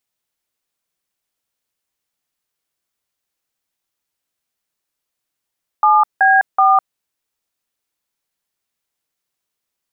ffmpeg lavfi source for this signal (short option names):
-f lavfi -i "aevalsrc='0.282*clip(min(mod(t,0.377),0.205-mod(t,0.377))/0.002,0,1)*(eq(floor(t/0.377),0)*(sin(2*PI*852*mod(t,0.377))+sin(2*PI*1209*mod(t,0.377)))+eq(floor(t/0.377),1)*(sin(2*PI*770*mod(t,0.377))+sin(2*PI*1633*mod(t,0.377)))+eq(floor(t/0.377),2)*(sin(2*PI*770*mod(t,0.377))+sin(2*PI*1209*mod(t,0.377))))':d=1.131:s=44100"